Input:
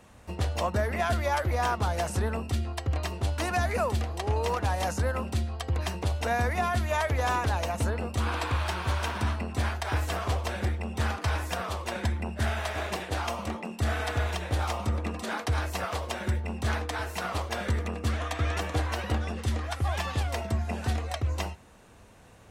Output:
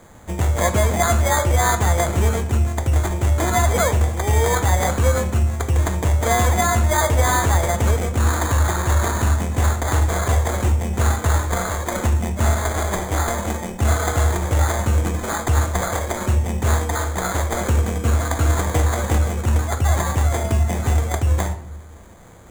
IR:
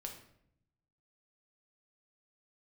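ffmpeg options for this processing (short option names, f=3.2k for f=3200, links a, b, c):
-filter_complex "[0:a]acrusher=samples=16:mix=1:aa=0.000001,highshelf=f=6k:t=q:w=3:g=6.5,asplit=2[a][b];[1:a]atrim=start_sample=2205,lowpass=7.2k[c];[b][c]afir=irnorm=-1:irlink=0,volume=4.5dB[d];[a][d]amix=inputs=2:normalize=0,volume=2.5dB"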